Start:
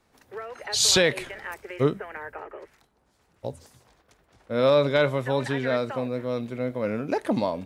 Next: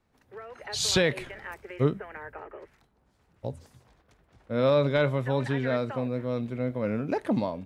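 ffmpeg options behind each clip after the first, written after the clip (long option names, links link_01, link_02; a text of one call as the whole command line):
ffmpeg -i in.wav -af "bass=frequency=250:gain=6,treble=frequency=4000:gain=-5,dynaudnorm=framelen=200:gausssize=5:maxgain=5dB,volume=-8dB" out.wav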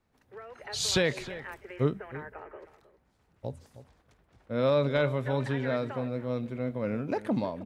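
ffmpeg -i in.wav -filter_complex "[0:a]asplit=2[link_01][link_02];[link_02]adelay=314.9,volume=-15dB,highshelf=frequency=4000:gain=-7.08[link_03];[link_01][link_03]amix=inputs=2:normalize=0,volume=-2.5dB" out.wav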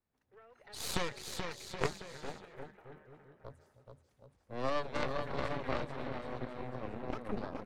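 ffmpeg -i in.wav -af "aecho=1:1:430|774|1049|1269|1445:0.631|0.398|0.251|0.158|0.1,aeval=exprs='0.251*(cos(1*acos(clip(val(0)/0.251,-1,1)))-cos(1*PI/2))+0.1*(cos(3*acos(clip(val(0)/0.251,-1,1)))-cos(3*PI/2))+0.0355*(cos(4*acos(clip(val(0)/0.251,-1,1)))-cos(4*PI/2))+0.02*(cos(5*acos(clip(val(0)/0.251,-1,1)))-cos(5*PI/2))':channel_layout=same" out.wav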